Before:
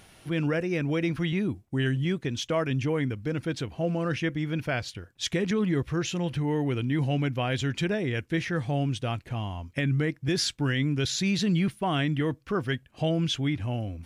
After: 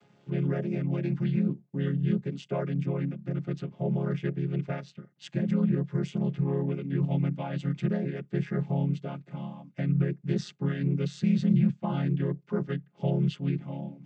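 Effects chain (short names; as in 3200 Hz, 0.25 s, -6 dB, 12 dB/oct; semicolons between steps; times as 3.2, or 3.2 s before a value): chord vocoder major triad, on C#3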